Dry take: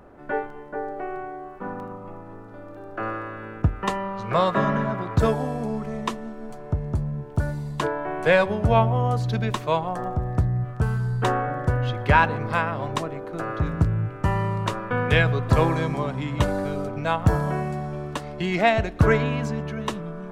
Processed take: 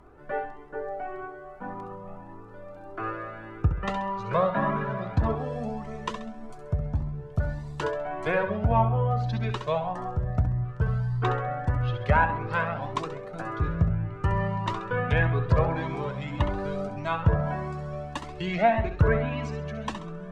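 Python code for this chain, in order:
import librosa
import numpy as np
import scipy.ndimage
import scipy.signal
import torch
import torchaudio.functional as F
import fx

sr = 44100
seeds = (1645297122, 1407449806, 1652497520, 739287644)

y = fx.env_lowpass_down(x, sr, base_hz=1700.0, full_db=-15.5)
y = fx.room_flutter(y, sr, wall_m=11.4, rt60_s=0.47)
y = fx.comb_cascade(y, sr, direction='rising', hz=1.7)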